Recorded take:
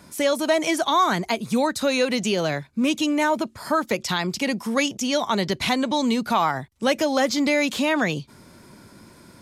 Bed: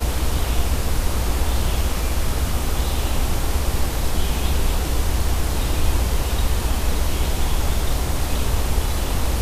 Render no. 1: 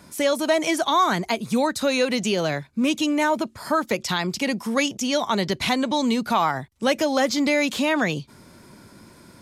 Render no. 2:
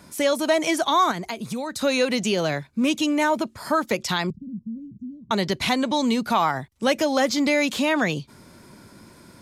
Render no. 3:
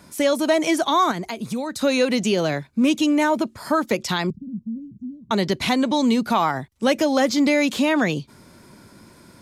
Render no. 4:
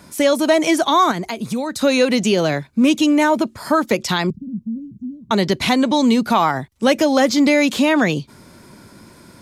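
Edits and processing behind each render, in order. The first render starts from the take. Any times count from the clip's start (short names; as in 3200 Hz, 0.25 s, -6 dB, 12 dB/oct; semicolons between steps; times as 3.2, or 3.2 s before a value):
nothing audible
1.11–1.82 compressor 5:1, threshold -26 dBFS; 4.3–5.31 inverse Chebyshev low-pass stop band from 700 Hz, stop band 60 dB
dynamic EQ 290 Hz, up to +4 dB, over -35 dBFS, Q 0.81
gain +4 dB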